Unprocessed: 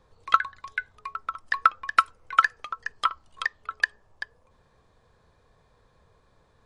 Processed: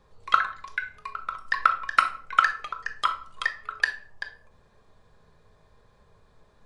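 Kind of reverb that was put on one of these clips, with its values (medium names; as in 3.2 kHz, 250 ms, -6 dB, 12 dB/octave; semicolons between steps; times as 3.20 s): simulated room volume 580 m³, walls furnished, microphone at 1.3 m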